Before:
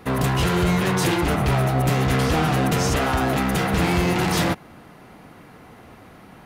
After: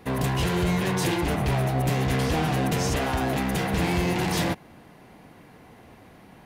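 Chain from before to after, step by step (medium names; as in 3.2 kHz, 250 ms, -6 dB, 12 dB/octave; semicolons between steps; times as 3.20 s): peaking EQ 1.3 kHz -7.5 dB 0.25 oct; trim -4 dB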